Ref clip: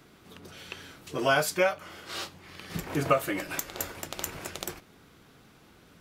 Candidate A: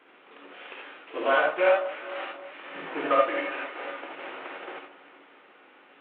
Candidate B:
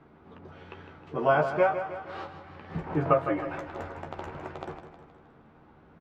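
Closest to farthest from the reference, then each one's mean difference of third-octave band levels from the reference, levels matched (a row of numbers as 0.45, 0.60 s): B, A; 9.0, 13.0 dB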